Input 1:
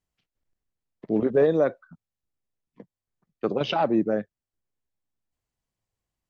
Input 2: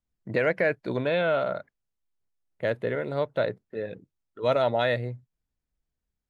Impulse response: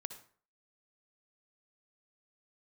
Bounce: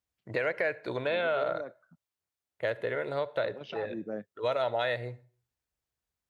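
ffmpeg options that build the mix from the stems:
-filter_complex "[0:a]volume=-10.5dB[link_01];[1:a]acompressor=threshold=-25dB:ratio=6,equalizer=frequency=200:width_type=o:width=1.3:gain=-14,volume=-1.5dB,asplit=3[link_02][link_03][link_04];[link_03]volume=-4.5dB[link_05];[link_04]apad=whole_len=277586[link_06];[link_01][link_06]sidechaincompress=threshold=-43dB:ratio=4:attack=8.7:release=390[link_07];[2:a]atrim=start_sample=2205[link_08];[link_05][link_08]afir=irnorm=-1:irlink=0[link_09];[link_07][link_02][link_09]amix=inputs=3:normalize=0,highpass=87"

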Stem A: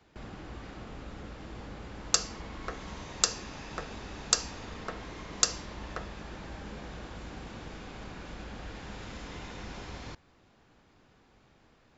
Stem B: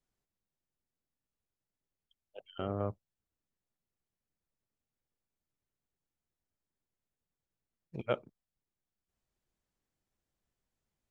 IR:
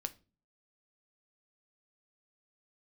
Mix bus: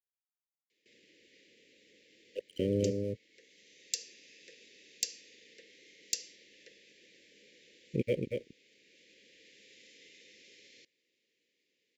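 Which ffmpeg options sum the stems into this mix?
-filter_complex "[0:a]highpass=630,adelay=700,volume=-8dB[link_01];[1:a]equalizer=frequency=125:width_type=o:width=1:gain=6,equalizer=frequency=250:width_type=o:width=1:gain=7,equalizer=frequency=500:width_type=o:width=1:gain=10,equalizer=frequency=1000:width_type=o:width=1:gain=6,equalizer=frequency=2000:width_type=o:width=1:gain=8,alimiter=limit=-18dB:level=0:latency=1:release=121,aeval=exprs='sgn(val(0))*max(abs(val(0))-0.00335,0)':channel_layout=same,volume=2dB,asplit=3[link_02][link_03][link_04];[link_03]volume=-5dB[link_05];[link_04]apad=whole_len=559181[link_06];[link_01][link_06]sidechaincompress=threshold=-31dB:ratio=4:attack=5.7:release=1330[link_07];[link_05]aecho=0:1:233:1[link_08];[link_07][link_02][link_08]amix=inputs=3:normalize=0,aeval=exprs='0.168*(abs(mod(val(0)/0.168+3,4)-2)-1)':channel_layout=same,asuperstop=centerf=1000:order=12:qfactor=0.71"

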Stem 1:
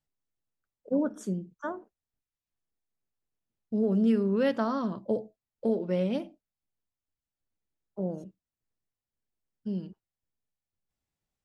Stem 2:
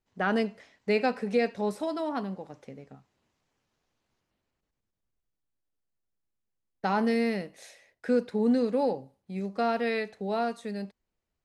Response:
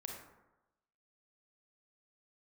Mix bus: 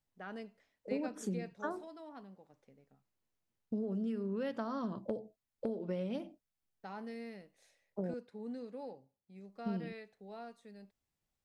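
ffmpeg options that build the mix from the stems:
-filter_complex "[0:a]acompressor=threshold=-33dB:ratio=12,asoftclip=type=hard:threshold=-24.5dB,volume=-0.5dB,asplit=3[link_01][link_02][link_03];[link_01]atrim=end=8.14,asetpts=PTS-STARTPTS,afade=type=out:start_time=8.136:duration=0.004:curve=hsin[link_04];[link_02]atrim=start=8.14:end=9.48,asetpts=PTS-STARTPTS,volume=0[link_05];[link_03]atrim=start=9.48,asetpts=PTS-STARTPTS,afade=type=in:duration=0.004:curve=hsin[link_06];[link_04][link_05][link_06]concat=n=3:v=0:a=1[link_07];[1:a]volume=-19dB[link_08];[link_07][link_08]amix=inputs=2:normalize=0"

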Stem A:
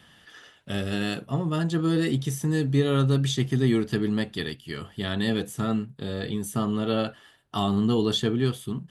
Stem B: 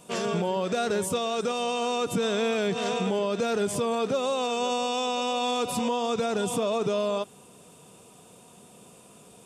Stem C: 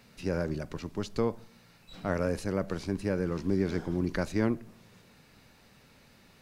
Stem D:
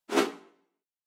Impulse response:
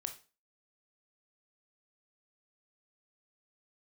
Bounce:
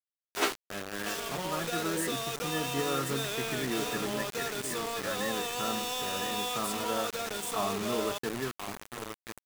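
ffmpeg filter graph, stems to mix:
-filter_complex "[0:a]lowpass=frequency=1800:width=0.5412,lowpass=frequency=1800:width=1.3066,volume=0.5dB,asplit=2[link_01][link_02];[link_02]volume=-8.5dB[link_03];[1:a]adelay=950,volume=-4dB,asplit=2[link_04][link_05];[link_05]volume=-19.5dB[link_06];[3:a]adelay=250,volume=2dB[link_07];[4:a]atrim=start_sample=2205[link_08];[link_06][link_08]afir=irnorm=-1:irlink=0[link_09];[link_03]aecho=0:1:1033|2066|3099|4132|5165:1|0.38|0.144|0.0549|0.0209[link_10];[link_01][link_04][link_07][link_09][link_10]amix=inputs=5:normalize=0,highpass=frequency=1100:poles=1,acrusher=bits=5:mix=0:aa=0.000001"

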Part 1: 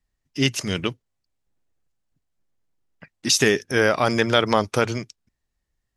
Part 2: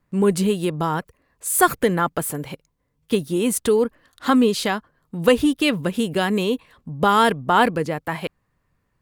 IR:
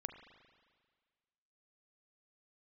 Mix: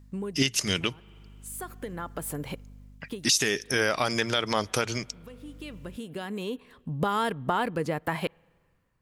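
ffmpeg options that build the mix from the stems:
-filter_complex "[0:a]highshelf=frequency=2100:gain=10,aeval=exprs='val(0)+0.00251*(sin(2*PI*50*n/s)+sin(2*PI*2*50*n/s)/2+sin(2*PI*3*50*n/s)/3+sin(2*PI*4*50*n/s)/4+sin(2*PI*5*50*n/s)/5)':channel_layout=same,volume=2dB,asplit=3[link_01][link_02][link_03];[link_02]volume=-19.5dB[link_04];[1:a]acompressor=threshold=-24dB:ratio=6,volume=-4.5dB,asplit=2[link_05][link_06];[link_06]volume=-19.5dB[link_07];[link_03]apad=whole_len=397372[link_08];[link_05][link_08]sidechaincompress=threshold=-34dB:ratio=12:attack=16:release=1240[link_09];[2:a]atrim=start_sample=2205[link_10];[link_04][link_07]amix=inputs=2:normalize=0[link_11];[link_11][link_10]afir=irnorm=-1:irlink=0[link_12];[link_01][link_09][link_12]amix=inputs=3:normalize=0,dynaudnorm=framelen=130:gausssize=7:maxgain=4dB,alimiter=limit=-11.5dB:level=0:latency=1:release=322"

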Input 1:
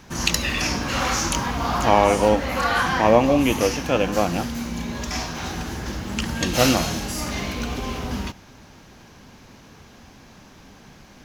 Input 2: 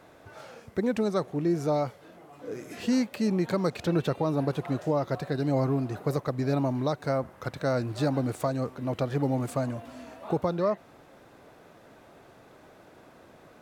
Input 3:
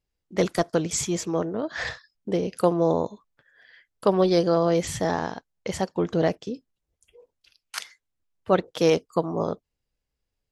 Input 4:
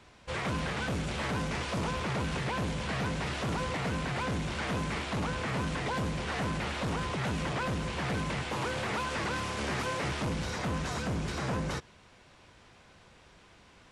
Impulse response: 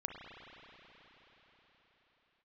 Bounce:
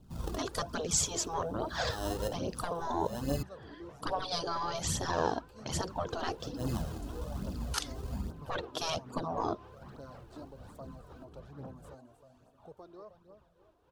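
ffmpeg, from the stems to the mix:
-filter_complex "[0:a]lowshelf=frequency=320:gain=11,acrusher=samples=19:mix=1:aa=0.000001,volume=-16dB,asplit=3[link_01][link_02][link_03];[link_01]atrim=end=3.43,asetpts=PTS-STARTPTS,afade=type=out:start_time=3.426:duration=0.004:curve=hsin[link_04];[link_02]atrim=start=3.43:end=5.88,asetpts=PTS-STARTPTS,volume=0[link_05];[link_03]atrim=start=5.88,asetpts=PTS-STARTPTS,afade=type=in:duration=0.004:curve=hsin[link_06];[link_04][link_05][link_06]concat=n=3:v=0:a=1[link_07];[1:a]lowshelf=frequency=180:gain=-8.5,adelay=2350,volume=-17.5dB,asplit=2[link_08][link_09];[link_09]volume=-11.5dB[link_10];[2:a]highshelf=frequency=6500:gain=-6,dynaudnorm=framelen=330:gausssize=3:maxgain=6dB,asoftclip=type=tanh:threshold=-6.5dB,volume=1dB,asplit=2[link_11][link_12];[3:a]lowpass=2200,acompressor=threshold=-39dB:ratio=6,tremolo=f=4:d=0.59,adelay=150,volume=-5dB[link_13];[link_12]apad=whole_len=495872[link_14];[link_07][link_14]sidechaincompress=threshold=-35dB:ratio=8:attack=22:release=193[link_15];[link_10]aecho=0:1:312|624|936|1248|1560:1|0.39|0.152|0.0593|0.0231[link_16];[link_15][link_08][link_11][link_13][link_16]amix=inputs=5:normalize=0,afftfilt=real='re*lt(hypot(re,im),0.355)':imag='im*lt(hypot(re,im),0.355)':win_size=1024:overlap=0.75,equalizer=frequency=2100:width=2.1:gain=-14,flanger=delay=0.1:depth=3.1:regen=12:speed=1.2:shape=triangular"

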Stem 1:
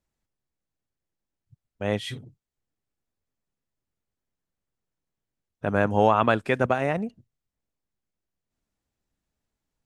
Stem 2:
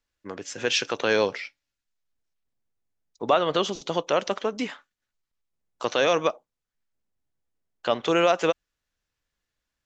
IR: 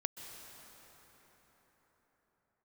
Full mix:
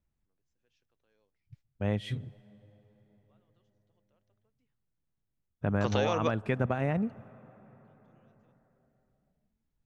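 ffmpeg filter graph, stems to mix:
-filter_complex "[0:a]bass=frequency=250:gain=10,treble=frequency=4000:gain=-7,volume=-6.5dB,asplit=3[link_01][link_02][link_03];[link_02]volume=-19dB[link_04];[1:a]lowshelf=frequency=180:gain=12,volume=-1.5dB[link_05];[link_03]apad=whole_len=434691[link_06];[link_05][link_06]sidechaingate=range=-53dB:threshold=-57dB:ratio=16:detection=peak[link_07];[2:a]atrim=start_sample=2205[link_08];[link_04][link_08]afir=irnorm=-1:irlink=0[link_09];[link_01][link_07][link_09]amix=inputs=3:normalize=0,acompressor=threshold=-24dB:ratio=6"

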